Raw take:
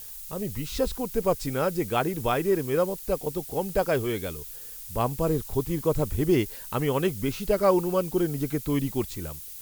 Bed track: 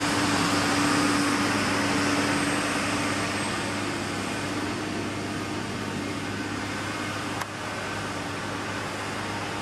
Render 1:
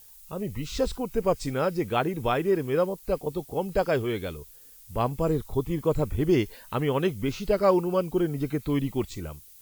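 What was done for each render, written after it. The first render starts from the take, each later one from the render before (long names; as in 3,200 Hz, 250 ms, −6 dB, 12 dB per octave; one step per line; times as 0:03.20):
noise reduction from a noise print 10 dB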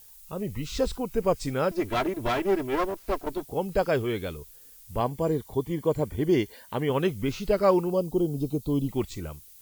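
0:01.71–0:03.43: lower of the sound and its delayed copy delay 3 ms
0:05.00–0:06.90: notch comb filter 1,300 Hz
0:07.90–0:08.89: Butterworth band-reject 1,800 Hz, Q 0.66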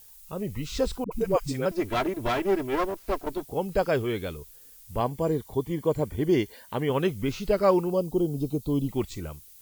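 0:01.04–0:01.66: all-pass dispersion highs, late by 73 ms, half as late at 340 Hz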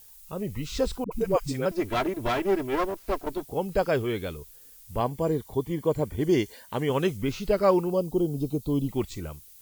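0:06.11–0:07.17: dynamic equaliser 6,800 Hz, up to +6 dB, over −55 dBFS, Q 1.1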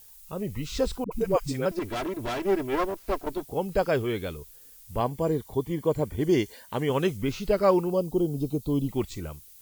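0:01.79–0:02.44: hard clipping −28 dBFS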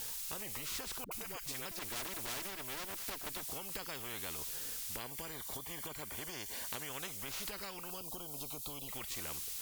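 downward compressor, threshold −34 dBFS, peak gain reduction 17 dB
every bin compressed towards the loudest bin 4 to 1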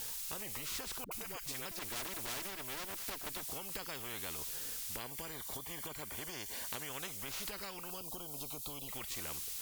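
no processing that can be heard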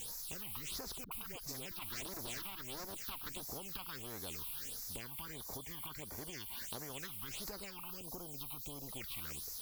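all-pass phaser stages 6, 1.5 Hz, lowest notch 450–3,000 Hz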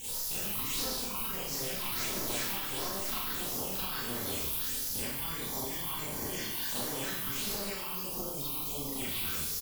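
double-tracking delay 25 ms −11.5 dB
four-comb reverb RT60 0.89 s, combs from 29 ms, DRR −9.5 dB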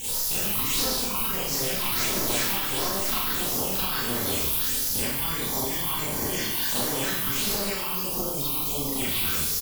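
level +8.5 dB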